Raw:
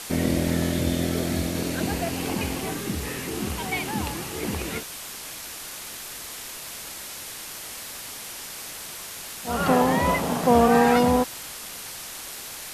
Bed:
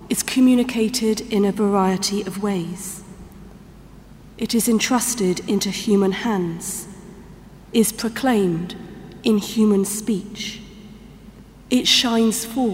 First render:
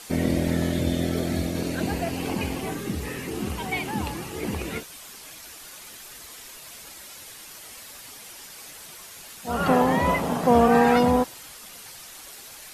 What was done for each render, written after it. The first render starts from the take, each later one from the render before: denoiser 8 dB, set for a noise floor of -38 dBFS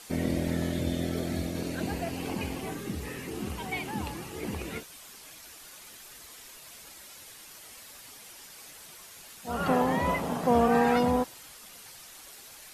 gain -5.5 dB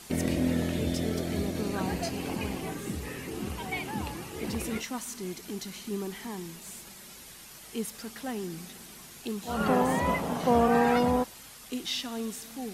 add bed -17.5 dB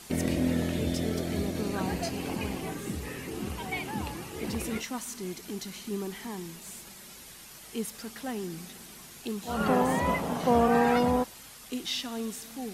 nothing audible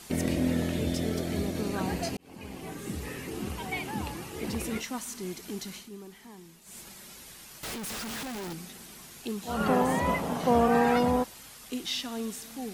2.17–3.01 fade in; 5.75–6.79 dip -10.5 dB, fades 0.14 s; 7.63–8.53 Schmitt trigger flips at -51.5 dBFS

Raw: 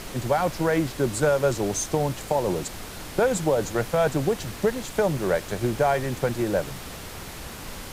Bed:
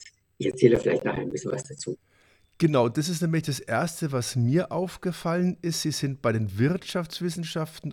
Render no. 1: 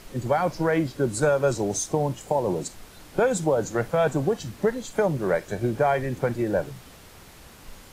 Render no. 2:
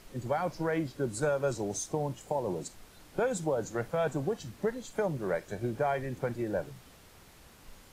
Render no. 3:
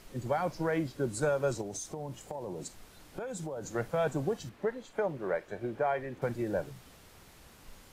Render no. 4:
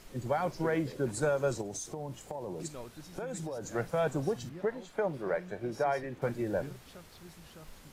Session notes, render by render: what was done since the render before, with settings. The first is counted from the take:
noise print and reduce 10 dB
gain -8 dB
1.61–3.75 compressor, threshold -35 dBFS; 4.49–6.22 tone controls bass -8 dB, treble -12 dB
add bed -23.5 dB

